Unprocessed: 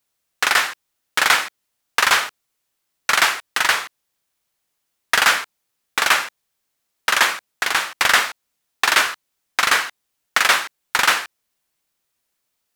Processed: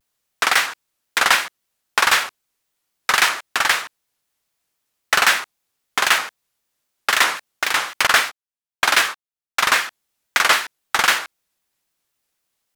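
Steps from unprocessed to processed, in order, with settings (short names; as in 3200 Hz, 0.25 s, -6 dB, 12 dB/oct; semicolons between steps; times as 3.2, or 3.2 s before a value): 8.07–9.76 gate -24 dBFS, range -22 dB; shaped vibrato square 3.8 Hz, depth 160 cents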